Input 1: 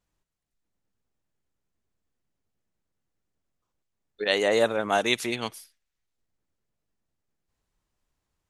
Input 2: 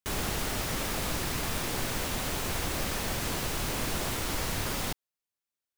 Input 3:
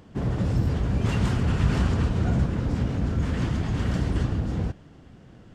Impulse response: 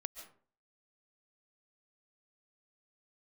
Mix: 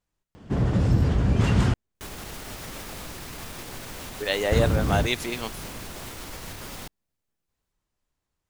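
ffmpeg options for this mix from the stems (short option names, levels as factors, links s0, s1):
-filter_complex "[0:a]volume=0.794[s0];[1:a]alimiter=level_in=1.5:limit=0.0631:level=0:latency=1:release=153,volume=0.668,adelay=1950,volume=0.944[s1];[2:a]adelay=350,volume=1.41,asplit=3[s2][s3][s4];[s2]atrim=end=1.74,asetpts=PTS-STARTPTS,afade=t=out:st=1.736:d=0.004:c=hsin[s5];[s3]atrim=start=1.74:end=4.52,asetpts=PTS-STARTPTS,volume=0[s6];[s4]atrim=start=4.52,asetpts=PTS-STARTPTS,afade=t=in:d=0.004:c=hsin[s7];[s5][s6][s7]concat=n=3:v=0:a=1[s8];[s0][s1][s8]amix=inputs=3:normalize=0"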